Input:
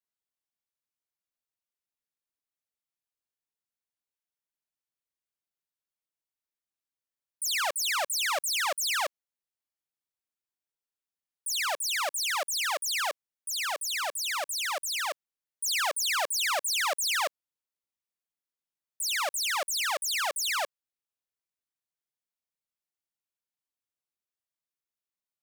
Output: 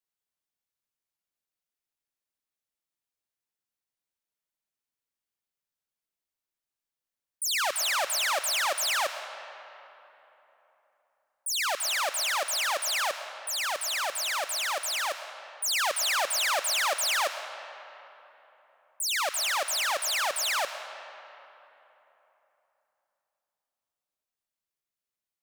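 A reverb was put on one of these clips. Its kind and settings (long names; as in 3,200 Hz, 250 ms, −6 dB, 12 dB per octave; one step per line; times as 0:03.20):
comb and all-pass reverb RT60 3.4 s, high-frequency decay 0.6×, pre-delay 70 ms, DRR 9 dB
level +1 dB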